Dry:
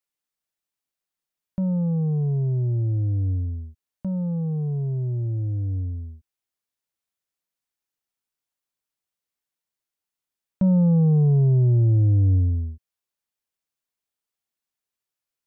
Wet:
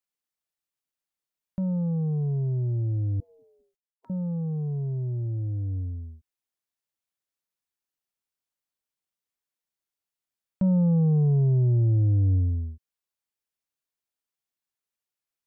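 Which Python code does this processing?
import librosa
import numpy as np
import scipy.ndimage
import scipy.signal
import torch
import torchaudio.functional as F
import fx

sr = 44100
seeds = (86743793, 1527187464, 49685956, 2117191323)

y = fx.spec_gate(x, sr, threshold_db=-30, keep='weak', at=(3.2, 4.1))
y = F.gain(torch.from_numpy(y), -3.5).numpy()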